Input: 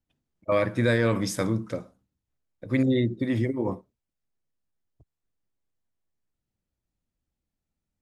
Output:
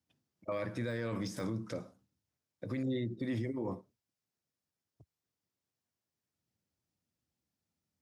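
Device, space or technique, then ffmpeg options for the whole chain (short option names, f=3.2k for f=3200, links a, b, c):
broadcast voice chain: -af "highpass=f=83:w=0.5412,highpass=f=83:w=1.3066,deesser=0.95,acompressor=threshold=-32dB:ratio=3,equalizer=f=5.3k:t=o:w=0.54:g=5.5,alimiter=level_in=3dB:limit=-24dB:level=0:latency=1:release=15,volume=-3dB,volume=-1dB"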